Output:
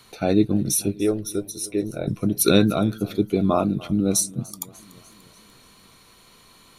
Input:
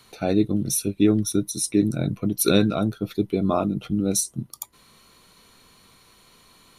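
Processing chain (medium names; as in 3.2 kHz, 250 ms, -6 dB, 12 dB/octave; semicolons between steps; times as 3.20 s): 0.95–2.08 s: ten-band graphic EQ 125 Hz -10 dB, 250 Hz -12 dB, 500 Hz +6 dB, 1 kHz -3 dB, 2 kHz -3 dB, 4 kHz -4 dB, 8 kHz -8 dB; modulated delay 294 ms, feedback 57%, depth 90 cents, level -21.5 dB; trim +2 dB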